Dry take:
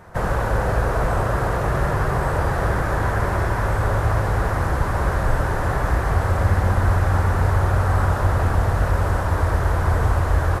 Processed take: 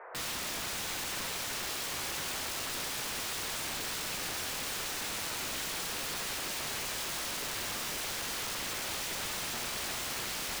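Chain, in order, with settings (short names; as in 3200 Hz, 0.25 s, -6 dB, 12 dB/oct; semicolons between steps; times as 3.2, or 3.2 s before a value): elliptic band-pass 440–2300 Hz, stop band 40 dB; limiter -20.5 dBFS, peak gain reduction 7.5 dB; wrapped overs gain 32 dB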